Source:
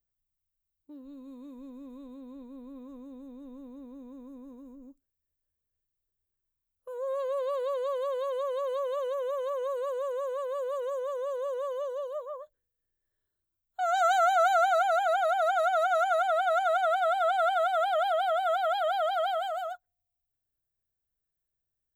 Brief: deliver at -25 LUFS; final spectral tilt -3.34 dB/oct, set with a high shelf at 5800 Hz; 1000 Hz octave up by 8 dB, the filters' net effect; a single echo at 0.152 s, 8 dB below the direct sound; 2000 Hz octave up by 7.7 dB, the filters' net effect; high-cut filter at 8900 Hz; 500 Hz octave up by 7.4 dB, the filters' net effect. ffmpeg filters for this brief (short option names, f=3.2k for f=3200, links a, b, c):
-af "lowpass=8.9k,equalizer=f=500:t=o:g=5.5,equalizer=f=1k:t=o:g=8.5,equalizer=f=2k:t=o:g=5.5,highshelf=f=5.8k:g=6,aecho=1:1:152:0.398,volume=-5dB"